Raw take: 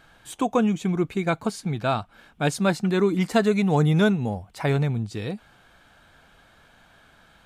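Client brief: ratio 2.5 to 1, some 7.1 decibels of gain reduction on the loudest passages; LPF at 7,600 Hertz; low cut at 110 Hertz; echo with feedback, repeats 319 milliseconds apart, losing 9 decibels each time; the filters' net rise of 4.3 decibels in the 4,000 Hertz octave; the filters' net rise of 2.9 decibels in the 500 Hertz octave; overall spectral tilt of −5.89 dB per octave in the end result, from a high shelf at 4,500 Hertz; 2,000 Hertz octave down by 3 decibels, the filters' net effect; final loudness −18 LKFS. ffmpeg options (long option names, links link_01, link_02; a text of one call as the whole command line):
ffmpeg -i in.wav -af "highpass=110,lowpass=7600,equalizer=frequency=500:width_type=o:gain=4,equalizer=frequency=2000:width_type=o:gain=-6,equalizer=frequency=4000:width_type=o:gain=8.5,highshelf=frequency=4500:gain=-3.5,acompressor=threshold=-24dB:ratio=2.5,aecho=1:1:319|638|957|1276:0.355|0.124|0.0435|0.0152,volume=9.5dB" out.wav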